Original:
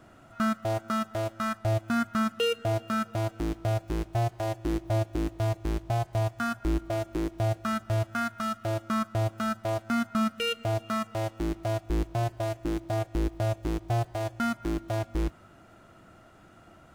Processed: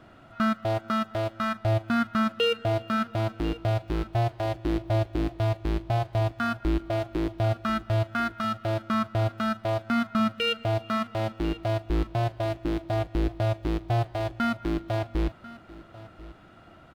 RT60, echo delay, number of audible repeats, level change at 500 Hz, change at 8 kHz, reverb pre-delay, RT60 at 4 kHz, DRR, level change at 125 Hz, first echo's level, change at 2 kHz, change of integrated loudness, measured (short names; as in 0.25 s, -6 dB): none, 1.042 s, 1, +2.0 dB, -6.5 dB, none, none, none, +2.0 dB, -18.5 dB, +3.0 dB, +2.0 dB